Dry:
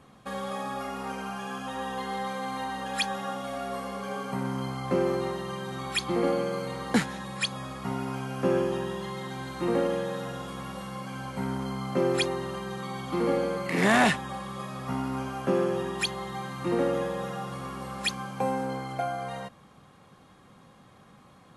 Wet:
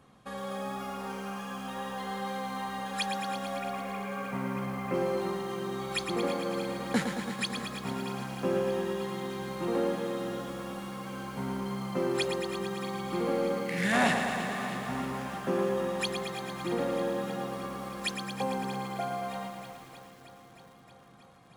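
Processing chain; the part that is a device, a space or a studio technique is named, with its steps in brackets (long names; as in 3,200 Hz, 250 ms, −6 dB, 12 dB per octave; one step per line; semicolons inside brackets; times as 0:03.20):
multi-head tape echo (echo machine with several playback heads 314 ms, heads first and second, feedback 69%, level −17.5 dB; tape wow and flutter 10 cents)
0:03.56–0:04.94: high shelf with overshoot 3,000 Hz −6.5 dB, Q 3
0:13.61–0:13.93: gain on a spectral selection 220–1,400 Hz −13 dB
feedback echo at a low word length 112 ms, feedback 80%, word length 8 bits, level −7 dB
level −4.5 dB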